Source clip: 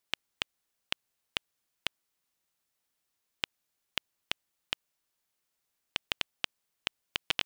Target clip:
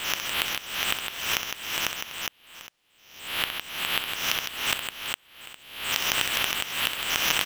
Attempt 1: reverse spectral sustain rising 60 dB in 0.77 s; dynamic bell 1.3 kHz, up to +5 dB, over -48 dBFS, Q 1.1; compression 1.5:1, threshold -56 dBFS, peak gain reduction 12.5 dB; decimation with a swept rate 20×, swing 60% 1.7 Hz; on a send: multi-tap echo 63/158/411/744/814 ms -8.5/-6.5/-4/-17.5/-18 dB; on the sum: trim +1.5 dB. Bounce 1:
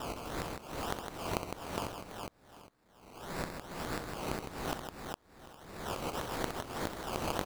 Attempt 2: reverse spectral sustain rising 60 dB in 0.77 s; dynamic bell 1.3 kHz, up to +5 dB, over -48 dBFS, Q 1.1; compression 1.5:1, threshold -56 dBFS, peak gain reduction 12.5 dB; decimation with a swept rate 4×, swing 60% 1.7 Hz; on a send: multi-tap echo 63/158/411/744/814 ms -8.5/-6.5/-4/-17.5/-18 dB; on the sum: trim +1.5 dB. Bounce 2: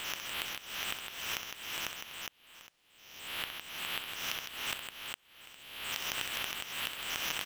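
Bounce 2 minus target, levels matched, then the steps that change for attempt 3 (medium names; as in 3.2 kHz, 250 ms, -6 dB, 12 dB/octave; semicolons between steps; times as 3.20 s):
compression: peak gain reduction +12.5 dB
remove: compression 1.5:1, threshold -56 dBFS, peak gain reduction 12.5 dB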